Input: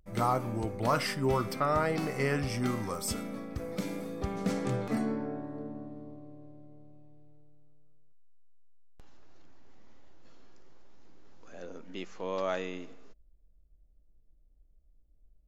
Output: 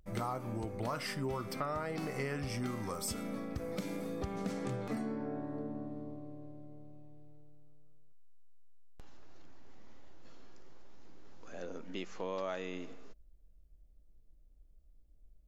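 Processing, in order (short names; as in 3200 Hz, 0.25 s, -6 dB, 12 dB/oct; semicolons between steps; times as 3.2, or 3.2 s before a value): compressor 4:1, threshold -37 dBFS, peak gain reduction 12.5 dB; gain +1.5 dB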